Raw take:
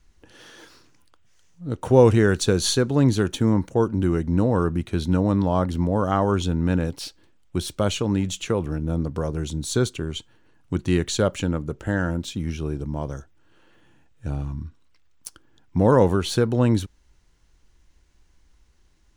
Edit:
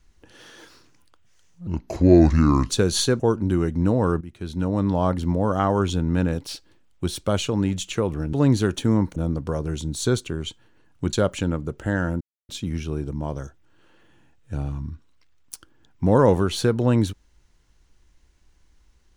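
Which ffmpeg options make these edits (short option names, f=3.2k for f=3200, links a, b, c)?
-filter_complex "[0:a]asplit=9[a][b][c][d][e][f][g][h][i];[a]atrim=end=1.674[j];[b]atrim=start=1.67:end=2.39,asetpts=PTS-STARTPTS,asetrate=30870,aresample=44100[k];[c]atrim=start=2.386:end=2.892[l];[d]atrim=start=3.718:end=4.73,asetpts=PTS-STARTPTS,afade=t=out:st=1.008:d=0.004:c=hsin:silence=0.149624[m];[e]atrim=start=4.73:end=8.852,asetpts=PTS-STARTPTS,afade=t=in:d=0.76:silence=0.149624[n];[f]atrim=start=2.888:end=3.722[o];[g]atrim=start=8.848:end=10.822[p];[h]atrim=start=11.138:end=12.22,asetpts=PTS-STARTPTS,afade=t=out:st=1.078:d=0.004:c=hsin,apad=pad_dur=0.28[q];[i]atrim=start=12.22,asetpts=PTS-STARTPTS,afade=t=in:d=0.004:c=hsin[r];[j][k]acrossfade=d=0.004:c1=hsin:c2=hsin[s];[s][l]acrossfade=d=0.004:c1=hsin:c2=hsin[t];[m][n]concat=n=2:v=0:a=1[u];[t][u]acrossfade=d=0.004:c1=hsin:c2=hsin[v];[v][o]acrossfade=d=0.004:c1=hsin:c2=hsin[w];[w][p]acrossfade=d=0.004:c1=hsin:c2=hsin[x];[q][r]concat=n=2:v=0:a=1[y];[x][y]acrossfade=d=0.004:c1=hsin:c2=hsin"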